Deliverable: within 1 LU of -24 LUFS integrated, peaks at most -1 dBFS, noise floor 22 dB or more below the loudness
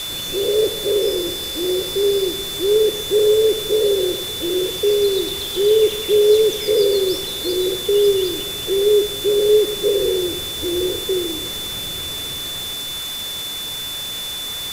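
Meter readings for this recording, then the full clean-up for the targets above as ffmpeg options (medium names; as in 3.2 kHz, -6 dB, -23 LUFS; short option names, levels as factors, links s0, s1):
steady tone 3.5 kHz; tone level -26 dBFS; noise floor -27 dBFS; noise floor target -41 dBFS; loudness -18.5 LUFS; peak level -4.5 dBFS; loudness target -24.0 LUFS
-> -af "bandreject=f=3500:w=30"
-af "afftdn=nr=14:nf=-27"
-af "volume=0.531"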